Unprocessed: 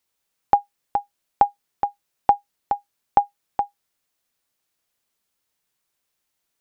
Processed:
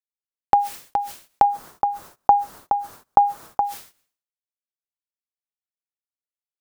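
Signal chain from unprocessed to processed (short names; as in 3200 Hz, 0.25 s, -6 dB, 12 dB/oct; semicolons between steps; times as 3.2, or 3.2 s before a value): gate -57 dBFS, range -31 dB; 1.44–3.61 resonant high shelf 1700 Hz -10 dB, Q 1.5; sustainer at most 130 dB/s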